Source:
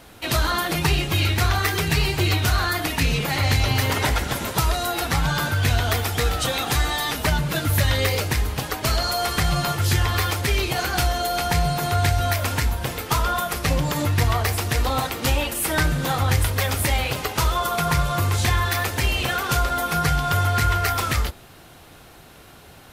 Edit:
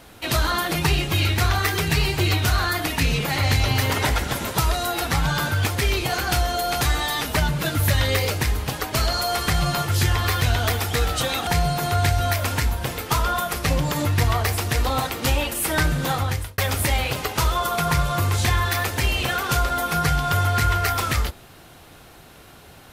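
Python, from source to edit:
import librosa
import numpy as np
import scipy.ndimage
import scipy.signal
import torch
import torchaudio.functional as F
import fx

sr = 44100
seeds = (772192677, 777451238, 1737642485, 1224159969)

y = fx.edit(x, sr, fx.swap(start_s=5.66, length_s=1.05, other_s=10.32, other_length_s=1.15),
    fx.fade_out_span(start_s=16.12, length_s=0.46), tone=tone)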